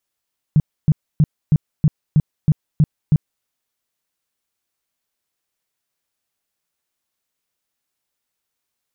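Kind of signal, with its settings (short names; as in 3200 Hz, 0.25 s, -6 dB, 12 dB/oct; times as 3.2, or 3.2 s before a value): tone bursts 152 Hz, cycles 6, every 0.32 s, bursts 9, -8.5 dBFS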